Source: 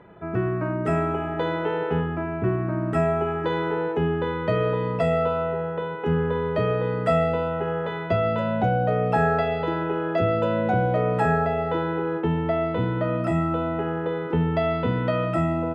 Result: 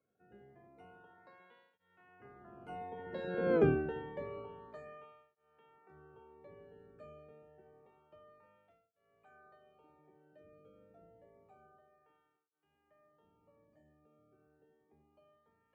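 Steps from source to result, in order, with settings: octave divider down 1 oct, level +2 dB; Doppler pass-by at 3.59 s, 31 m/s, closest 2.4 m; cancelling through-zero flanger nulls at 0.28 Hz, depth 1.1 ms

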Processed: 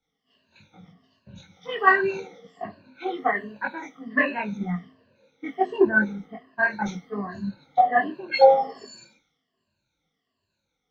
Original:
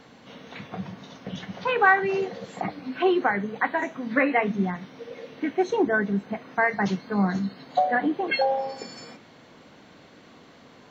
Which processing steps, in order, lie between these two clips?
drifting ripple filter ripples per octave 1.4, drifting -1.3 Hz, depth 21 dB; chorus voices 6, 0.95 Hz, delay 21 ms, depth 3 ms; three bands expanded up and down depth 100%; trim -5 dB

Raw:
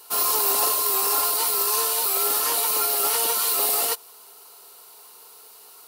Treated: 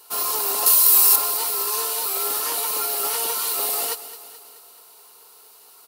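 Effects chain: 0.66–1.16 s: tilt EQ +3 dB/octave; on a send: feedback delay 215 ms, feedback 56%, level -14.5 dB; on the sum: trim -2 dB

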